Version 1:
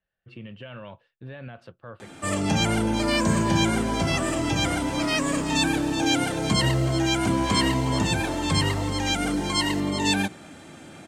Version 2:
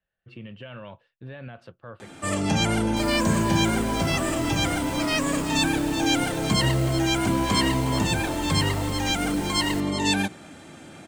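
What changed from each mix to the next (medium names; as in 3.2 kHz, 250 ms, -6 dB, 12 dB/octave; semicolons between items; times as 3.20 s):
second sound: remove band-pass filter 5.7 kHz, Q 1.5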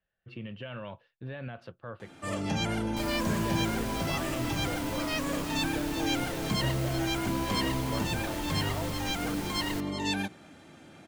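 first sound -7.5 dB; master: add peaking EQ 8.2 kHz -7.5 dB 0.44 oct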